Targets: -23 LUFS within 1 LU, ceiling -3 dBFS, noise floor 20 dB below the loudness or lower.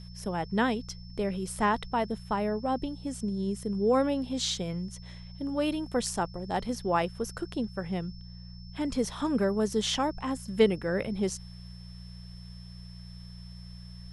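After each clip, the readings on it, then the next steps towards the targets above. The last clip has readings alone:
hum 60 Hz; harmonics up to 180 Hz; hum level -43 dBFS; steady tone 5300 Hz; tone level -53 dBFS; loudness -30.5 LUFS; peak -11.0 dBFS; loudness target -23.0 LUFS
-> de-hum 60 Hz, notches 3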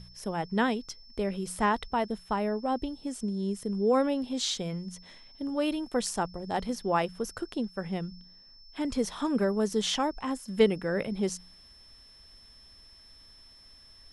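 hum none; steady tone 5300 Hz; tone level -53 dBFS
-> notch 5300 Hz, Q 30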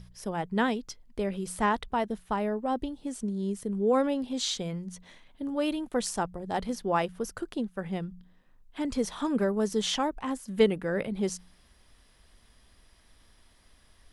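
steady tone none; loudness -30.5 LUFS; peak -11.0 dBFS; loudness target -23.0 LUFS
-> gain +7.5 dB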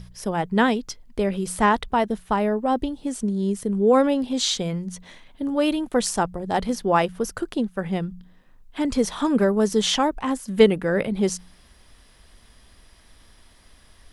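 loudness -23.0 LUFS; peak -3.5 dBFS; noise floor -54 dBFS

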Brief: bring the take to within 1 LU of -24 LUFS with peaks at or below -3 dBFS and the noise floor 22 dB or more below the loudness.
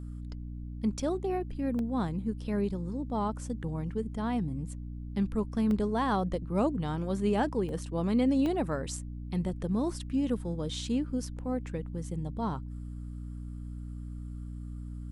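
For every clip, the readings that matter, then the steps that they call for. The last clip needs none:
dropouts 4; longest dropout 1.2 ms; hum 60 Hz; harmonics up to 300 Hz; hum level -37 dBFS; loudness -32.5 LUFS; peak -17.0 dBFS; loudness target -24.0 LUFS
-> interpolate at 1.79/5.71/7.69/8.46, 1.2 ms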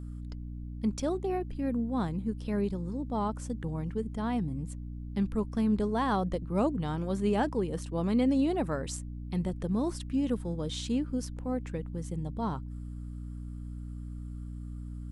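dropouts 0; hum 60 Hz; harmonics up to 300 Hz; hum level -37 dBFS
-> notches 60/120/180/240/300 Hz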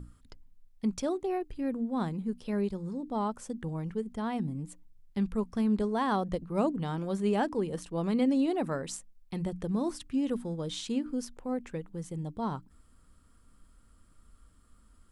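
hum none; loudness -32.5 LUFS; peak -16.0 dBFS; loudness target -24.0 LUFS
-> gain +8.5 dB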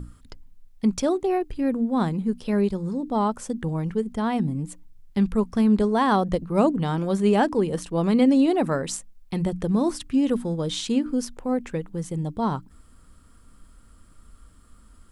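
loudness -24.0 LUFS; peak -7.5 dBFS; noise floor -52 dBFS

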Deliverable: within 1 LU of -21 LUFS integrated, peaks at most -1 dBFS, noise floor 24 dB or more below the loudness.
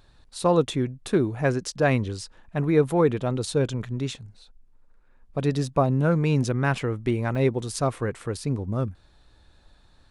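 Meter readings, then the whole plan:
dropouts 1; longest dropout 3.1 ms; loudness -25.0 LUFS; peak -8.5 dBFS; loudness target -21.0 LUFS
-> interpolate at 7.35, 3.1 ms; gain +4 dB

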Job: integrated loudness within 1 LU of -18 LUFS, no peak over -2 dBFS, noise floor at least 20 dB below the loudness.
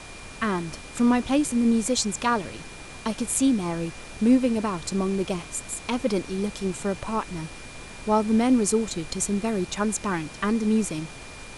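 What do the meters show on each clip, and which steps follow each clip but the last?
steady tone 2400 Hz; tone level -46 dBFS; noise floor -42 dBFS; noise floor target -45 dBFS; loudness -25.0 LUFS; peak -7.5 dBFS; loudness target -18.0 LUFS
-> notch 2400 Hz, Q 30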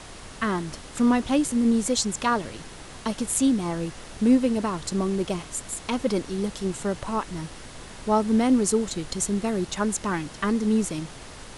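steady tone none; noise floor -42 dBFS; noise floor target -45 dBFS
-> noise print and reduce 6 dB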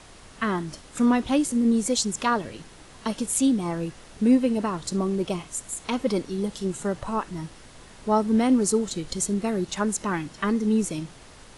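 noise floor -48 dBFS; loudness -25.5 LUFS; peak -7.5 dBFS; loudness target -18.0 LUFS
-> gain +7.5 dB; limiter -2 dBFS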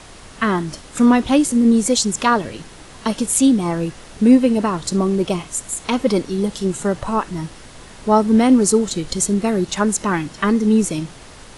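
loudness -18.0 LUFS; peak -2.0 dBFS; noise floor -41 dBFS

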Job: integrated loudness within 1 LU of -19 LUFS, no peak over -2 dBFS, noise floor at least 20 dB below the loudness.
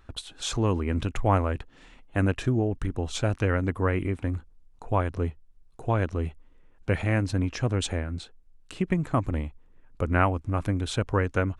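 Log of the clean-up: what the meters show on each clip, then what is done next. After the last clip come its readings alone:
loudness -28.0 LUFS; peak -8.0 dBFS; loudness target -19.0 LUFS
-> gain +9 dB; limiter -2 dBFS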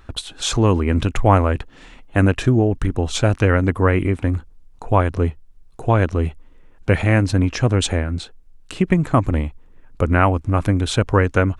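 loudness -19.0 LUFS; peak -2.0 dBFS; noise floor -47 dBFS

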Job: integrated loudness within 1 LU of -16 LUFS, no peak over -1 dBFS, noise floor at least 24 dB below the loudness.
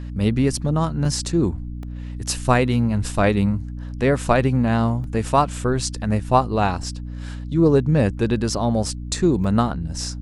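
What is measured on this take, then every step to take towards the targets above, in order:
dropouts 5; longest dropout 1.9 ms; hum 60 Hz; harmonics up to 300 Hz; hum level -28 dBFS; loudness -21.0 LUFS; peak -2.0 dBFS; loudness target -16.0 LUFS
-> interpolate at 1.05/1.83/5.04/6.83/9.44, 1.9 ms; notches 60/120/180/240/300 Hz; gain +5 dB; limiter -1 dBFS

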